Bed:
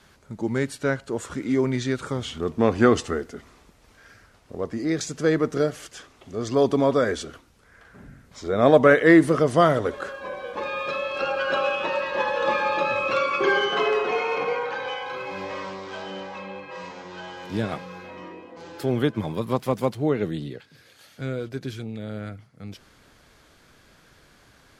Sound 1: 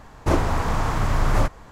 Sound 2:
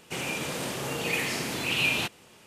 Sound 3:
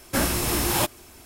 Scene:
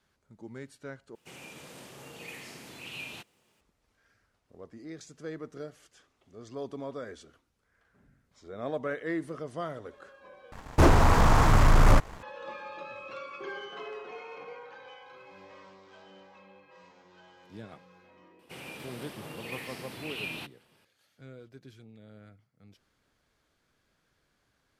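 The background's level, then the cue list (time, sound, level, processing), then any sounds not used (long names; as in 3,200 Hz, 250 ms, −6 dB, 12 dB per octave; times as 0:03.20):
bed −18.5 dB
0:01.15: overwrite with 2 −15.5 dB + bit reduction 11 bits
0:10.52: overwrite with 1 −4 dB + leveller curve on the samples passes 2
0:18.39: mix in 2 −11.5 dB + parametric band 6,800 Hz −10 dB 0.47 octaves
not used: 3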